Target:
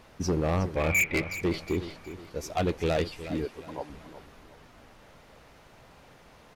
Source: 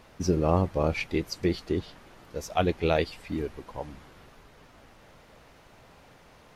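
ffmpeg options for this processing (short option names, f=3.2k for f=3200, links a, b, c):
-filter_complex "[0:a]asettb=1/sr,asplit=3[a][b][c];[a]atrim=end=3.454[d];[b]atrim=start=3.45:end=3.9,asetpts=PTS-STARTPTS,afade=t=in:d=0.004:c=qsin,afade=t=out:st=0.446:d=0.004:c=qsin,highpass=250[e];[c]atrim=start=3.896[f];[d][e]acrossfade=d=0.004:c1=hsin:c2=qsin[g];[g][f]acrossfade=d=0.004:c1=qsin:c2=hsin,asoftclip=type=tanh:threshold=-13.5dB,asettb=1/sr,asplit=3[h][i][j];[h]atrim=end=0.764[k];[i]atrim=start=0.76:end=1.34,asetpts=PTS-STARTPTS,afade=t=in:d=0.004:c=qsin,afade=t=out:st=0.576:d=0.004:c=qsin,lowpass=f=2.3k:t=q:w=13[l];[j]atrim=start=1.336[m];[k][l]acrossfade=d=0.004:c1=hsin:c2=qsin[n];[n][m]acrossfade=d=0.004:c1=qsin:c2=hsin,volume=21.5dB,asoftclip=hard,volume=-21.5dB,aecho=1:1:366|732|1098|1464:0.224|0.0851|0.0323|0.0123"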